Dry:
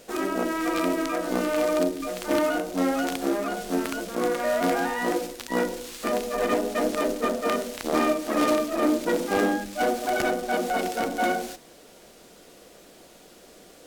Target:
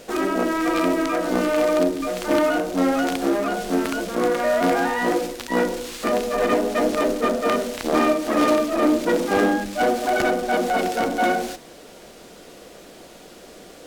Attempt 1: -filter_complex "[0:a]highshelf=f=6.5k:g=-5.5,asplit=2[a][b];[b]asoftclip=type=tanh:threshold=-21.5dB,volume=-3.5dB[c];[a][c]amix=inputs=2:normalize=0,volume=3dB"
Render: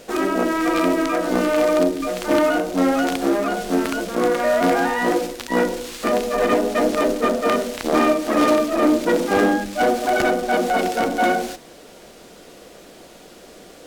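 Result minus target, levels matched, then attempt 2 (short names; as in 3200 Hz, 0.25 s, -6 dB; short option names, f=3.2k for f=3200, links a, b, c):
soft clip: distortion -8 dB
-filter_complex "[0:a]highshelf=f=6.5k:g=-5.5,asplit=2[a][b];[b]asoftclip=type=tanh:threshold=-32.5dB,volume=-3.5dB[c];[a][c]amix=inputs=2:normalize=0,volume=3dB"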